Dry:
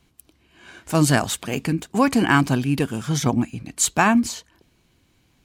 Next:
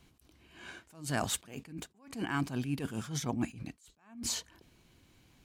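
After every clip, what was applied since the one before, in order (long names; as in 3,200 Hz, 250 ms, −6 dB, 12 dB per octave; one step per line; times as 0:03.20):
reversed playback
downward compressor 5 to 1, threshold −29 dBFS, peak gain reduction 15.5 dB
reversed playback
level that may rise only so fast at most 130 dB per second
level −1.5 dB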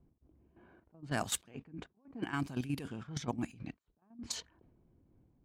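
output level in coarse steps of 11 dB
low-pass that shuts in the quiet parts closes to 490 Hz, open at −34 dBFS
amplitude modulation by smooth noise, depth 50%
level +3 dB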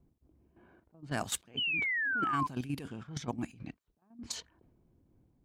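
sound drawn into the spectrogram fall, 0:01.57–0:02.47, 1,000–3,100 Hz −32 dBFS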